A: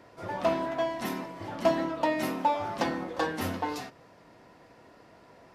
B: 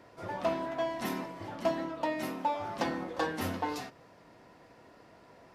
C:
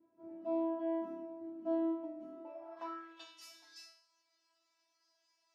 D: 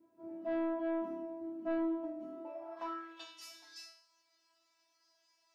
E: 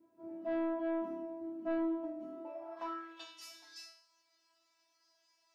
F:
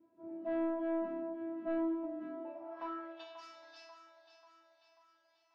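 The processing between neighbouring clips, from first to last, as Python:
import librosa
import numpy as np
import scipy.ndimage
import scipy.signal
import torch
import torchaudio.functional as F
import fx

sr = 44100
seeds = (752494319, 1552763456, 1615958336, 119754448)

y1 = fx.rider(x, sr, range_db=3, speed_s=0.5)
y1 = y1 * 10.0 ** (-3.5 / 20.0)
y2 = fx.filter_sweep_bandpass(y1, sr, from_hz=240.0, to_hz=5500.0, start_s=2.28, end_s=3.38, q=2.4)
y2 = fx.comb_fb(y2, sr, f0_hz=330.0, decay_s=0.53, harmonics='all', damping=0.0, mix_pct=100)
y2 = y2 * 10.0 ** (14.0 / 20.0)
y3 = 10.0 ** (-33.0 / 20.0) * np.tanh(y2 / 10.0 ** (-33.0 / 20.0))
y3 = y3 * 10.0 ** (3.5 / 20.0)
y4 = y3
y5 = fx.air_absorb(y4, sr, metres=200.0)
y5 = fx.echo_split(y5, sr, split_hz=550.0, low_ms=87, high_ms=539, feedback_pct=52, wet_db=-10.0)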